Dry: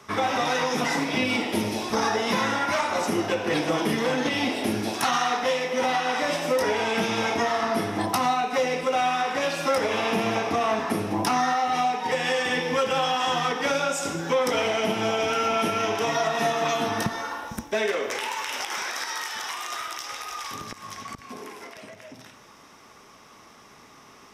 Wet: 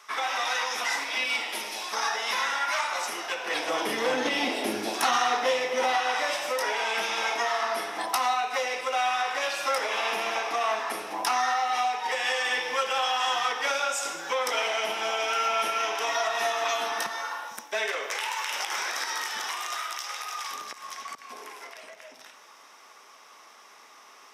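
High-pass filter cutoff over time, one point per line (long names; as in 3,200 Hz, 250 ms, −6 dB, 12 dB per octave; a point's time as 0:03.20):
0:03.32 1,000 Hz
0:04.15 340 Hz
0:05.59 340 Hz
0:06.37 750 Hz
0:18.32 750 Hz
0:19.36 200 Hz
0:19.78 610 Hz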